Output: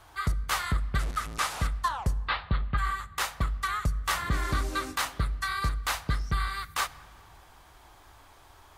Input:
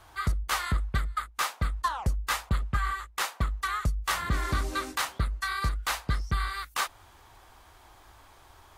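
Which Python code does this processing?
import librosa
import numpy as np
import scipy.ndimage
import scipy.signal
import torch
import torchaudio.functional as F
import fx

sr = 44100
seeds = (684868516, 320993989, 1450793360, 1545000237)

y = fx.delta_mod(x, sr, bps=64000, step_db=-31.5, at=(0.99, 1.67))
y = fx.steep_lowpass(y, sr, hz=4400.0, slope=72, at=(2.24, 2.77), fade=0.02)
y = fx.room_shoebox(y, sr, seeds[0], volume_m3=2900.0, walls='mixed', distance_m=0.33)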